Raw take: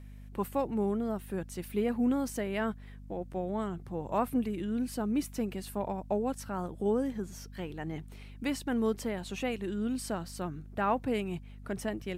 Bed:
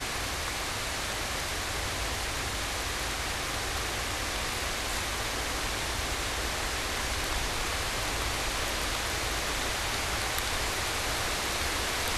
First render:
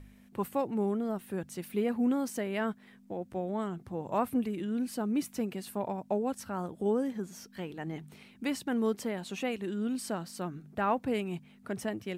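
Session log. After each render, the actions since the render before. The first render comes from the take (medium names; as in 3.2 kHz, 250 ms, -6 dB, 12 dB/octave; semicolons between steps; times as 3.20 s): de-hum 50 Hz, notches 3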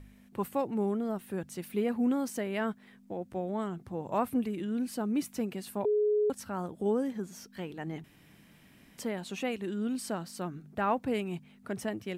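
5.85–6.30 s: bleep 420 Hz -23.5 dBFS; 8.04–8.98 s: room tone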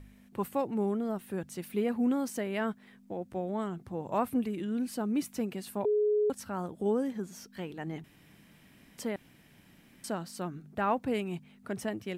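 9.16–10.04 s: room tone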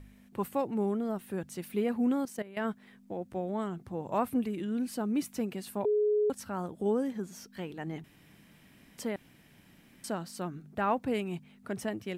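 2.25–2.65 s: level held to a coarse grid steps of 16 dB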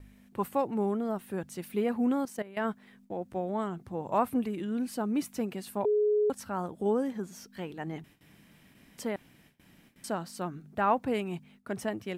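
gate with hold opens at -49 dBFS; dynamic bell 940 Hz, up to +4 dB, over -44 dBFS, Q 0.87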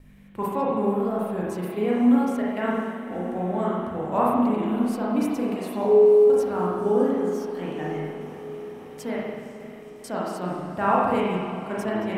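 echo that smears into a reverb 508 ms, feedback 70%, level -14 dB; spring tank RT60 1.4 s, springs 33/45 ms, chirp 60 ms, DRR -5.5 dB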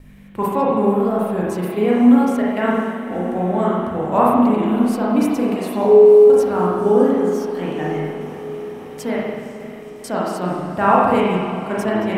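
trim +7 dB; peak limiter -2 dBFS, peak gain reduction 1 dB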